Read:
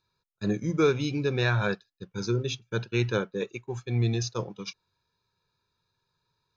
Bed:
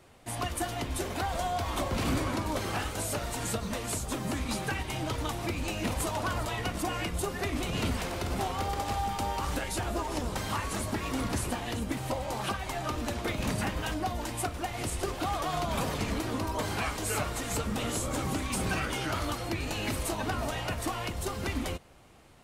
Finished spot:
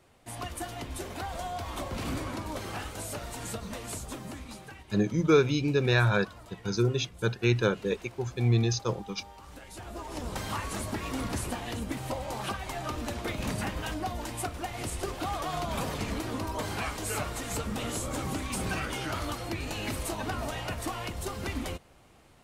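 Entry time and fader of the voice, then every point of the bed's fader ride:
4.50 s, +1.5 dB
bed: 0:04.05 −4.5 dB
0:04.91 −17 dB
0:09.45 −17 dB
0:10.35 −1.5 dB

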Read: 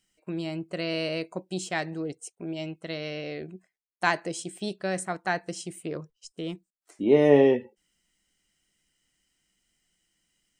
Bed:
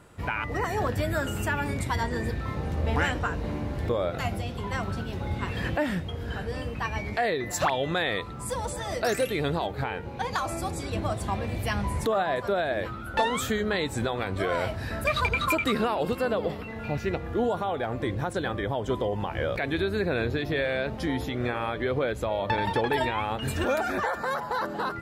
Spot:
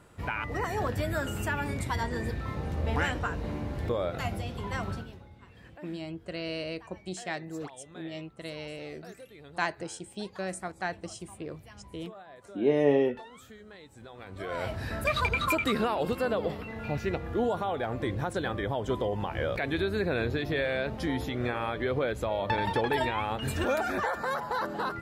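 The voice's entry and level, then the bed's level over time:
5.55 s, −5.5 dB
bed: 0:04.93 −3 dB
0:05.31 −22.5 dB
0:13.95 −22.5 dB
0:14.74 −2 dB

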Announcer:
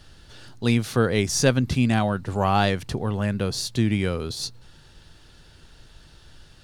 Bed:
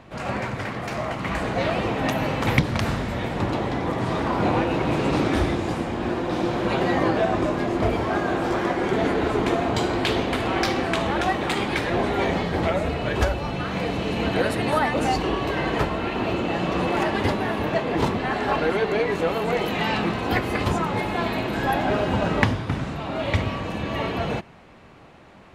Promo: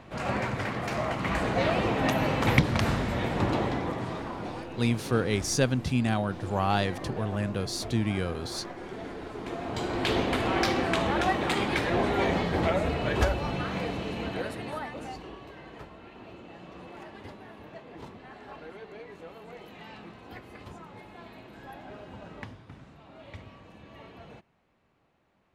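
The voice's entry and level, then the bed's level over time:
4.15 s, −5.5 dB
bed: 0:03.62 −2 dB
0:04.59 −17 dB
0:09.32 −17 dB
0:10.16 −3 dB
0:13.53 −3 dB
0:15.61 −22 dB

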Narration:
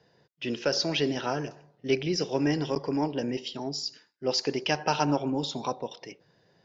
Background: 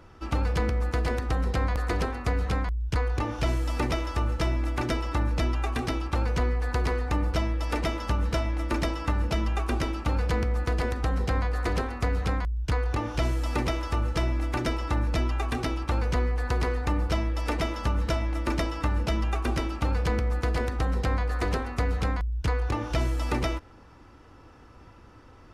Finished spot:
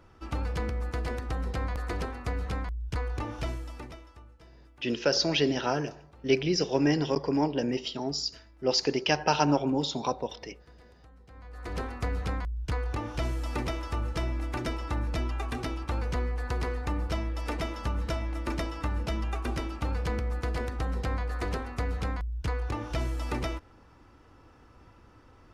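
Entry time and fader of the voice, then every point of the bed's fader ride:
4.40 s, +1.5 dB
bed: 0:03.40 −5.5 dB
0:04.39 −28.5 dB
0:11.25 −28.5 dB
0:11.82 −4.5 dB

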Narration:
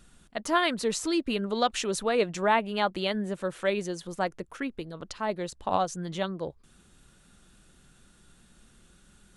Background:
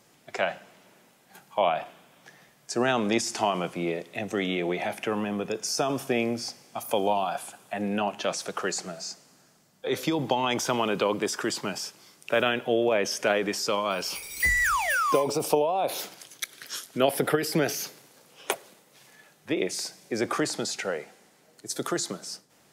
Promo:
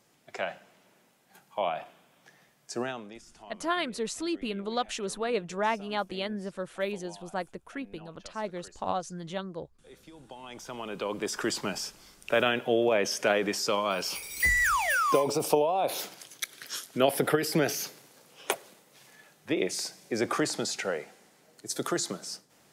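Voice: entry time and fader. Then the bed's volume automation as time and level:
3.15 s, −4.5 dB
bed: 0:02.79 −6 dB
0:03.19 −24.5 dB
0:10.13 −24.5 dB
0:11.44 −1 dB

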